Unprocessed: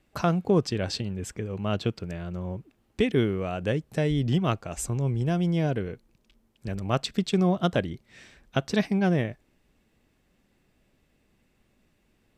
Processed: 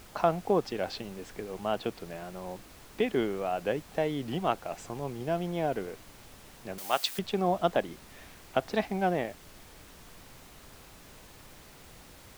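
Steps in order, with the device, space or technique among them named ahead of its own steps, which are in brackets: horn gramophone (band-pass 250–4100 Hz; peaking EQ 780 Hz +9 dB 0.77 oct; wow and flutter; pink noise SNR 18 dB); 6.78–7.19 s: tilt EQ +4.5 dB/octave; trim -4 dB

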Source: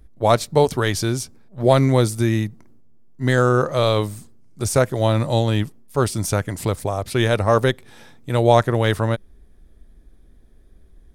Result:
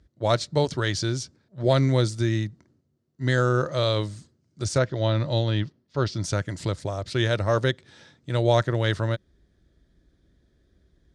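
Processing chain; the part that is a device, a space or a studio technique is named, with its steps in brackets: car door speaker (cabinet simulation 81–7000 Hz, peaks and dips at 230 Hz -7 dB, 440 Hz -6 dB, 780 Hz -9 dB, 1.1 kHz -6 dB, 2.4 kHz -5 dB, 4.3 kHz +3 dB); 4.78–6.24 s: low-pass 5.4 kHz 24 dB/octave; trim -2.5 dB

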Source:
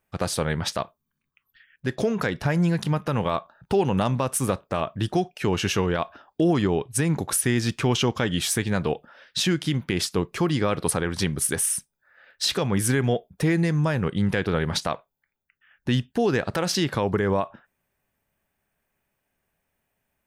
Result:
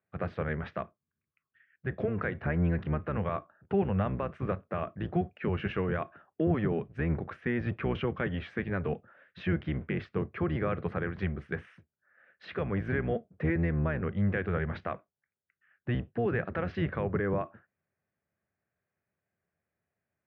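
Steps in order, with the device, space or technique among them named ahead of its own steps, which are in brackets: sub-octave bass pedal (octave divider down 1 oct, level +2 dB; cabinet simulation 89–2100 Hz, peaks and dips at 120 Hz -5 dB, 270 Hz -6 dB, 910 Hz -8 dB); dynamic bell 2.2 kHz, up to +3 dB, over -45 dBFS, Q 0.8; trim -7 dB

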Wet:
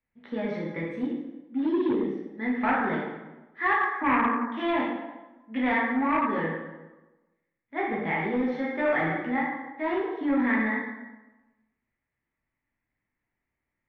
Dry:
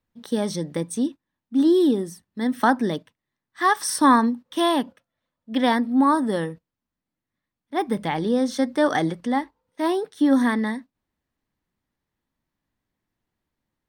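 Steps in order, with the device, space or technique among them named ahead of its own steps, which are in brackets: 3.82–4.43 s: Chebyshev band-pass 220–2300 Hz, order 4; plate-style reverb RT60 1.1 s, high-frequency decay 0.7×, DRR -5.5 dB; overdriven synthesiser ladder filter (saturation -8 dBFS, distortion -15 dB; four-pole ladder low-pass 2.4 kHz, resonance 65%)

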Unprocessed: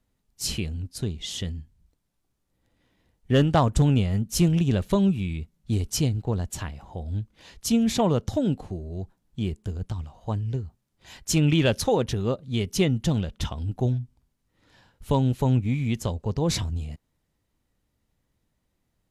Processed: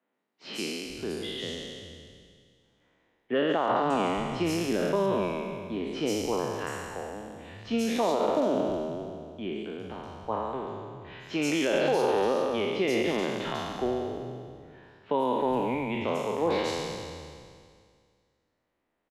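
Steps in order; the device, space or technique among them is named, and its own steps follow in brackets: spectral sustain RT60 2.10 s; DJ mixer with the lows and highs turned down (three-band isolator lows -21 dB, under 250 Hz, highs -18 dB, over 3.3 kHz; peak limiter -16 dBFS, peak gain reduction 11 dB); three bands offset in time mids, highs, lows 140/400 ms, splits 150/4000 Hz

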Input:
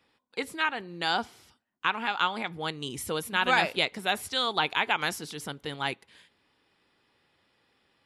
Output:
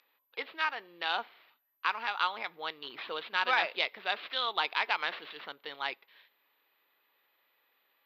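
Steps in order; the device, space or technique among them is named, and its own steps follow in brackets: toy sound module (decimation joined by straight lines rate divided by 6×; class-D stage that switches slowly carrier 12 kHz; cabinet simulation 700–4400 Hz, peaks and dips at 790 Hz -4 dB, 1.5 kHz -3 dB, 3.9 kHz +3 dB)

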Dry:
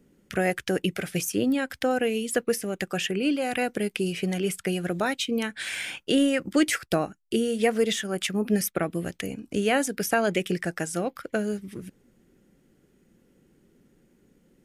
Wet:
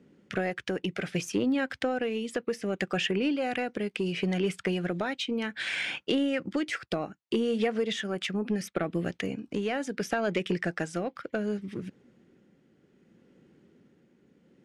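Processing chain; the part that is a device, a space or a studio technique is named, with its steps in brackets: AM radio (band-pass 100–4400 Hz; compression 5:1, threshold -25 dBFS, peak gain reduction 8.5 dB; saturation -18 dBFS, distortion -23 dB; tremolo 0.67 Hz, depth 33%); trim +2.5 dB

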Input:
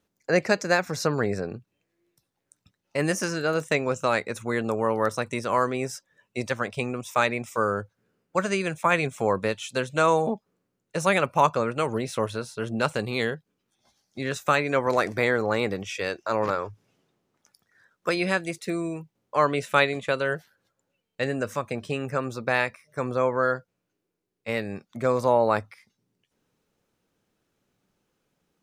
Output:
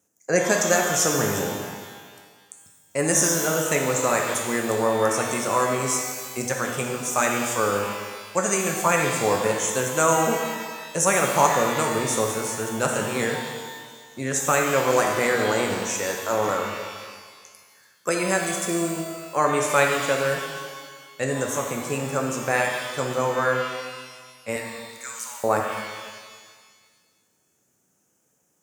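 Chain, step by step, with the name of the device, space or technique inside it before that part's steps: budget condenser microphone (high-pass 94 Hz; resonant high shelf 5.3 kHz +9 dB, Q 3); 24.56–25.44 s: inverse Chebyshev high-pass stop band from 270 Hz, stop band 80 dB; pitch-shifted reverb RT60 1.6 s, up +12 st, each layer -8 dB, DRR 1 dB

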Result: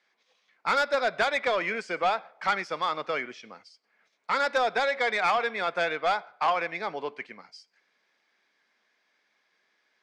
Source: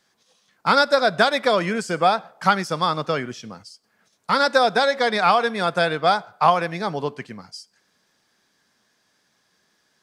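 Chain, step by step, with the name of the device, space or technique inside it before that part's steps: intercom (band-pass 360–4100 Hz; peaking EQ 2.2 kHz +10 dB 0.38 oct; saturation -11.5 dBFS, distortion -15 dB); trim -5.5 dB

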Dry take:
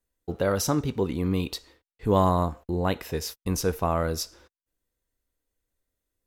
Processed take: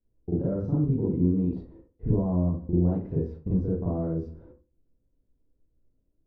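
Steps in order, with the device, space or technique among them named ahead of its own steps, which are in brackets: television next door (compression 5:1, threshold -34 dBFS, peak gain reduction 16 dB; low-pass 330 Hz 12 dB/octave; reverberation, pre-delay 34 ms, DRR -7.5 dB); trim +5 dB

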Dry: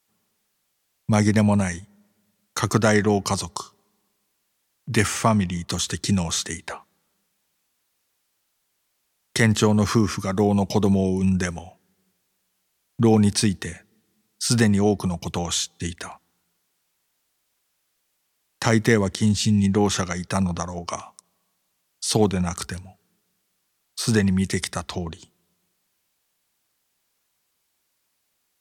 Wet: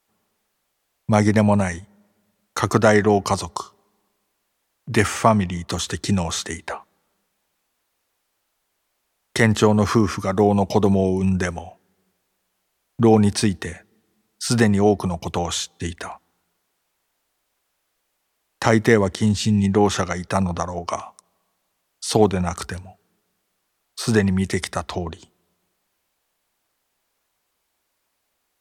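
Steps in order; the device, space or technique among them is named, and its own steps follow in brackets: FFT filter 130 Hz 0 dB, 690 Hz +6 dB, 5.5 kHz -2 dB; low shelf boost with a cut just above (bass shelf 77 Hz +7.5 dB; peaking EQ 150 Hz -3 dB 1.1 oct)

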